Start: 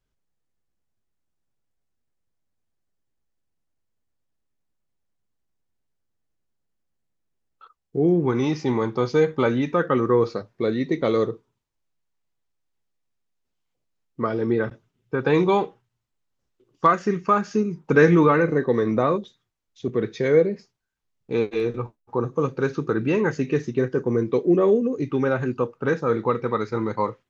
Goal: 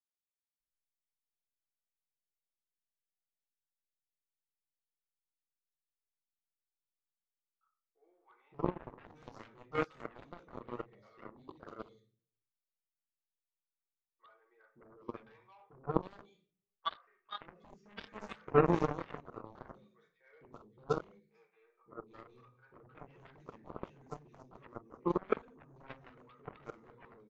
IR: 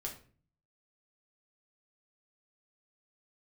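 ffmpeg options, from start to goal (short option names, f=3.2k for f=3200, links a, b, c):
-filter_complex "[0:a]acrossover=split=740|2600[a][b][c];[a]adelay=570[d];[c]adelay=760[e];[d][b][e]amix=inputs=3:normalize=0[f];[1:a]atrim=start_sample=2205[g];[f][g]afir=irnorm=-1:irlink=0,aeval=exprs='0.596*(cos(1*acos(clip(val(0)/0.596,-1,1)))-cos(1*PI/2))+0.211*(cos(3*acos(clip(val(0)/0.596,-1,1)))-cos(3*PI/2))':c=same,volume=-5.5dB"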